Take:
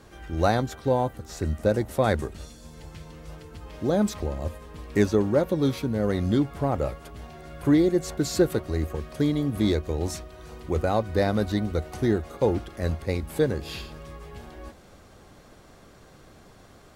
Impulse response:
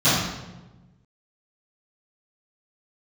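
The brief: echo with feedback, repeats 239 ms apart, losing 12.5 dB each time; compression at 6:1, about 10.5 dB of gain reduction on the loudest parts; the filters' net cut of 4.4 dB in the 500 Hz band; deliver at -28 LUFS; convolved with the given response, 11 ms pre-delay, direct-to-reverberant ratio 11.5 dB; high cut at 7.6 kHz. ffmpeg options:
-filter_complex "[0:a]lowpass=7600,equalizer=f=500:t=o:g=-5.5,acompressor=threshold=0.0355:ratio=6,aecho=1:1:239|478|717:0.237|0.0569|0.0137,asplit=2[s0][s1];[1:a]atrim=start_sample=2205,adelay=11[s2];[s1][s2]afir=irnorm=-1:irlink=0,volume=0.0251[s3];[s0][s3]amix=inputs=2:normalize=0,volume=2.11"

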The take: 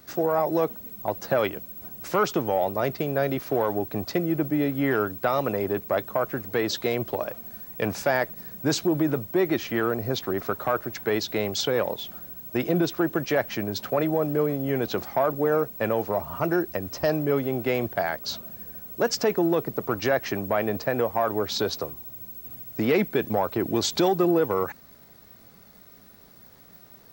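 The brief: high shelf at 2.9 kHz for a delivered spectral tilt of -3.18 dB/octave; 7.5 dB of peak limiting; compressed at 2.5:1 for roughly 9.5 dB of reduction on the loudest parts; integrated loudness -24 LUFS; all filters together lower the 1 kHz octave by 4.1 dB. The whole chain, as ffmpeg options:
-af "equalizer=f=1000:t=o:g=-7,highshelf=f=2900:g=7.5,acompressor=threshold=0.0224:ratio=2.5,volume=2.99,alimiter=limit=0.188:level=0:latency=1"

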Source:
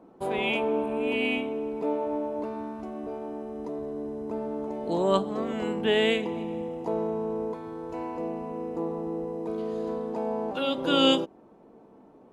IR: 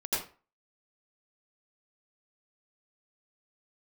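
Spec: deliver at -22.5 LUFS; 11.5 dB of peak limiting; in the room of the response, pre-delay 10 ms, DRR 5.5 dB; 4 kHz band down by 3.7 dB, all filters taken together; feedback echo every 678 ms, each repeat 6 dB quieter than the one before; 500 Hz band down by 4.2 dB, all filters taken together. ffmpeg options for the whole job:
-filter_complex "[0:a]equalizer=f=500:t=o:g=-5,equalizer=f=4000:t=o:g=-5.5,alimiter=limit=0.0668:level=0:latency=1,aecho=1:1:678|1356|2034|2712|3390|4068:0.501|0.251|0.125|0.0626|0.0313|0.0157,asplit=2[s0][s1];[1:a]atrim=start_sample=2205,adelay=10[s2];[s1][s2]afir=irnorm=-1:irlink=0,volume=0.251[s3];[s0][s3]amix=inputs=2:normalize=0,volume=3.16"

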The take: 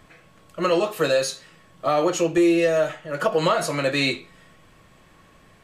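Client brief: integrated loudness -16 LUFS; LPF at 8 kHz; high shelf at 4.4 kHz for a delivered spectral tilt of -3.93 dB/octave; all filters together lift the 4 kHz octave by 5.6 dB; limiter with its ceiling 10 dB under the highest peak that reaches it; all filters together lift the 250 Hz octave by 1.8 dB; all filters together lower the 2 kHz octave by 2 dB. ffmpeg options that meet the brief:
-af "lowpass=8000,equalizer=f=250:t=o:g=3,equalizer=f=2000:t=o:g=-6,equalizer=f=4000:t=o:g=5.5,highshelf=f=4400:g=5,volume=3.35,alimiter=limit=0.473:level=0:latency=1"

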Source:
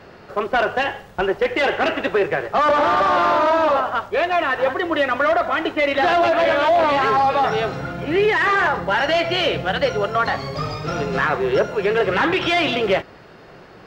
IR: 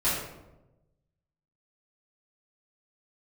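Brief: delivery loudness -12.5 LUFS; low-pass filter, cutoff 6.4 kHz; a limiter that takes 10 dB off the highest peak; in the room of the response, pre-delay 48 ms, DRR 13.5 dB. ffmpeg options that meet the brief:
-filter_complex "[0:a]lowpass=6400,alimiter=limit=0.126:level=0:latency=1,asplit=2[s0][s1];[1:a]atrim=start_sample=2205,adelay=48[s2];[s1][s2]afir=irnorm=-1:irlink=0,volume=0.0562[s3];[s0][s3]amix=inputs=2:normalize=0,volume=4.22"

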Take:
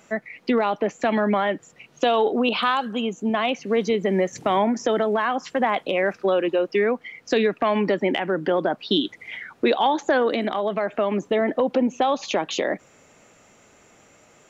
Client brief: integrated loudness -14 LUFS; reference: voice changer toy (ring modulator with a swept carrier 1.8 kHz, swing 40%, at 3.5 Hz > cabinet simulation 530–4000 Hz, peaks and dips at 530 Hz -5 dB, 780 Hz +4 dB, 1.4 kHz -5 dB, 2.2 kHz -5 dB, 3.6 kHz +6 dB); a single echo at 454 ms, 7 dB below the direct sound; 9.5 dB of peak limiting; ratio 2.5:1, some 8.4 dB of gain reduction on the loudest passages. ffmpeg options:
-af "acompressor=threshold=0.0355:ratio=2.5,alimiter=limit=0.0631:level=0:latency=1,aecho=1:1:454:0.447,aeval=exprs='val(0)*sin(2*PI*1800*n/s+1800*0.4/3.5*sin(2*PI*3.5*n/s))':c=same,highpass=530,equalizer=f=530:t=q:w=4:g=-5,equalizer=f=780:t=q:w=4:g=4,equalizer=f=1400:t=q:w=4:g=-5,equalizer=f=2200:t=q:w=4:g=-5,equalizer=f=3600:t=q:w=4:g=6,lowpass=f=4000:w=0.5412,lowpass=f=4000:w=1.3066,volume=11.2"

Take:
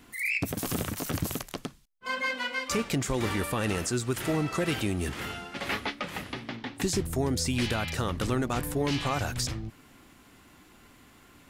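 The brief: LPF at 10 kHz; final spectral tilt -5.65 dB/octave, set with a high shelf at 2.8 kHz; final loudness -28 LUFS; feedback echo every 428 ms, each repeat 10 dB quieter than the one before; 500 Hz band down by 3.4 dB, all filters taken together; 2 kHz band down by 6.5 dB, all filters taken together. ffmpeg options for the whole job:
-af "lowpass=10000,equalizer=f=500:t=o:g=-4,equalizer=f=2000:t=o:g=-4.5,highshelf=f=2800:g=-8.5,aecho=1:1:428|856|1284|1712:0.316|0.101|0.0324|0.0104,volume=1.78"

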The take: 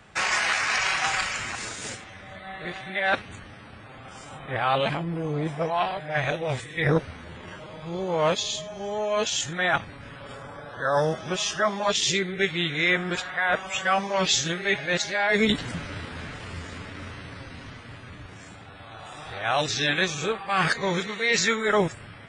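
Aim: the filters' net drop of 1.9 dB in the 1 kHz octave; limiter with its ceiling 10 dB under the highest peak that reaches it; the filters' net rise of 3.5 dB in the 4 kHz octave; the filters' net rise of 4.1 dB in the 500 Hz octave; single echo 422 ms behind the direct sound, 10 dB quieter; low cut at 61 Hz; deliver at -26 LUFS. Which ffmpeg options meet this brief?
-af "highpass=61,equalizer=f=500:t=o:g=6.5,equalizer=f=1000:t=o:g=-5.5,equalizer=f=4000:t=o:g=4.5,alimiter=limit=0.126:level=0:latency=1,aecho=1:1:422:0.316,volume=1.19"

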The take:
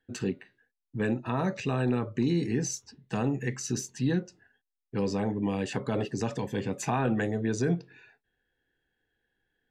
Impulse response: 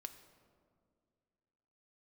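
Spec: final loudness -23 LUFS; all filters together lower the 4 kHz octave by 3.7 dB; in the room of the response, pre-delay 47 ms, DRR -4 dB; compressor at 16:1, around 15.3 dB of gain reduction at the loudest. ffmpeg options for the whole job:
-filter_complex "[0:a]equalizer=f=4000:t=o:g=-5,acompressor=threshold=0.0126:ratio=16,asplit=2[s0][s1];[1:a]atrim=start_sample=2205,adelay=47[s2];[s1][s2]afir=irnorm=-1:irlink=0,volume=2.66[s3];[s0][s3]amix=inputs=2:normalize=0,volume=5.96"

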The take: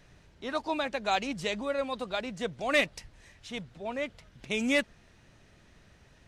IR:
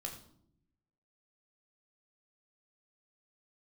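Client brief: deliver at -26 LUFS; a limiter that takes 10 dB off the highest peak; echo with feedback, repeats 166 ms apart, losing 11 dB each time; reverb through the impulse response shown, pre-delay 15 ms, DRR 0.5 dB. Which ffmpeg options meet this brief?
-filter_complex "[0:a]alimiter=level_in=1.19:limit=0.0631:level=0:latency=1,volume=0.841,aecho=1:1:166|332|498:0.282|0.0789|0.0221,asplit=2[s0][s1];[1:a]atrim=start_sample=2205,adelay=15[s2];[s1][s2]afir=irnorm=-1:irlink=0,volume=1.12[s3];[s0][s3]amix=inputs=2:normalize=0,volume=2.37"

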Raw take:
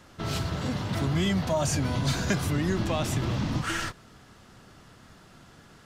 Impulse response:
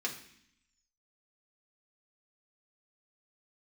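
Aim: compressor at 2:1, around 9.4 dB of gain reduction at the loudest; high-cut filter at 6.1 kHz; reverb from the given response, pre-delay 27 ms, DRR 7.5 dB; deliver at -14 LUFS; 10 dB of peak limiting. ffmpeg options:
-filter_complex "[0:a]lowpass=6100,acompressor=threshold=0.01:ratio=2,alimiter=level_in=2.99:limit=0.0631:level=0:latency=1,volume=0.335,asplit=2[s0][s1];[1:a]atrim=start_sample=2205,adelay=27[s2];[s1][s2]afir=irnorm=-1:irlink=0,volume=0.282[s3];[s0][s3]amix=inputs=2:normalize=0,volume=26.6"

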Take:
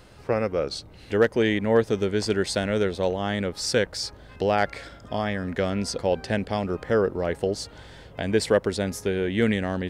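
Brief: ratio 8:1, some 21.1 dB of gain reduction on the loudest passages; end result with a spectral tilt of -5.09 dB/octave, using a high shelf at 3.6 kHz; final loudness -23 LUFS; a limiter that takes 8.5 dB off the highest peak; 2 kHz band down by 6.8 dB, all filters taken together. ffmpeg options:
-af "equalizer=f=2000:t=o:g=-8,highshelf=f=3600:g=-3.5,acompressor=threshold=0.0126:ratio=8,volume=11.2,alimiter=limit=0.266:level=0:latency=1"

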